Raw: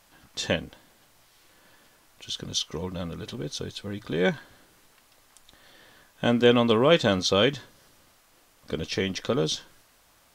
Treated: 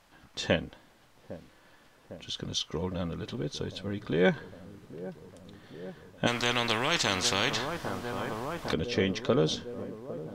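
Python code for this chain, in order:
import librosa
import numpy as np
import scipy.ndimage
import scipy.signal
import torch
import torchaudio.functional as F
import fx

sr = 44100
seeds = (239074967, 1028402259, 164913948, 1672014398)

y = fx.lowpass(x, sr, hz=3200.0, slope=6)
y = fx.echo_wet_lowpass(y, sr, ms=805, feedback_pct=76, hz=870.0, wet_db=-15)
y = fx.spectral_comp(y, sr, ratio=4.0, at=(6.26, 8.72), fade=0.02)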